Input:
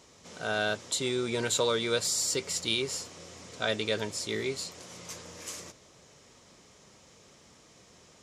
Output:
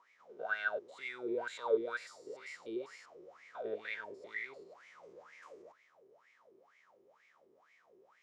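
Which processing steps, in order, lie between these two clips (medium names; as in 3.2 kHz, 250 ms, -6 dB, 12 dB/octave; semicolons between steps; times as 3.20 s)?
spectrogram pixelated in time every 100 ms; wah-wah 2.1 Hz 370–2200 Hz, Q 12; trim +8 dB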